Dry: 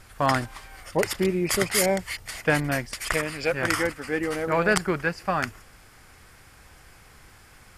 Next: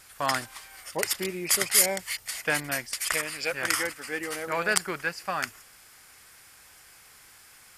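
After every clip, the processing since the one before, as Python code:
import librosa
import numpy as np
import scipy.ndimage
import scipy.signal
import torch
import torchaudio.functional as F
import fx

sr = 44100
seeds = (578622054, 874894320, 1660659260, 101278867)

y = fx.tilt_eq(x, sr, slope=3.0)
y = y * 10.0 ** (-4.5 / 20.0)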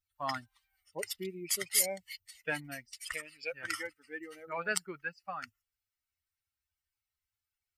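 y = fx.bin_expand(x, sr, power=2.0)
y = y * 10.0 ** (-5.0 / 20.0)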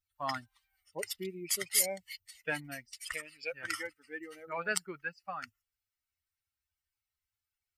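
y = x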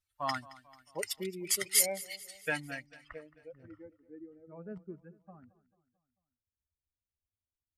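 y = fx.filter_sweep_lowpass(x, sr, from_hz=12000.0, to_hz=280.0, start_s=2.47, end_s=3.37, q=0.98)
y = fx.echo_feedback(y, sr, ms=221, feedback_pct=52, wet_db=-19.5)
y = y * 10.0 ** (1.5 / 20.0)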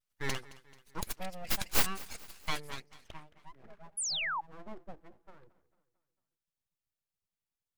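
y = fx.vibrato(x, sr, rate_hz=0.47, depth_cents=25.0)
y = np.abs(y)
y = fx.spec_paint(y, sr, seeds[0], shape='fall', start_s=3.97, length_s=0.44, low_hz=790.0, high_hz=11000.0, level_db=-35.0)
y = y * 10.0 ** (1.0 / 20.0)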